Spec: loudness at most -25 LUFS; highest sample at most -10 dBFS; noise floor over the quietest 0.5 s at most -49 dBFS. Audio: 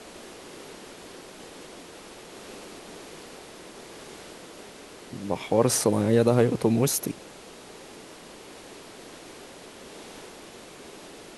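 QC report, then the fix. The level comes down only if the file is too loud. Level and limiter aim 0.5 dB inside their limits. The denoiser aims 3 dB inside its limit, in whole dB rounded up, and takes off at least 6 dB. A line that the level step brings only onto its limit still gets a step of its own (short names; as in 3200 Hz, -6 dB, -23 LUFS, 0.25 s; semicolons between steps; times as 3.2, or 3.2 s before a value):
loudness -23.5 LUFS: fail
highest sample -7.0 dBFS: fail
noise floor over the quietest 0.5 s -46 dBFS: fail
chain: denoiser 6 dB, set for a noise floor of -46 dBFS; gain -2 dB; limiter -10.5 dBFS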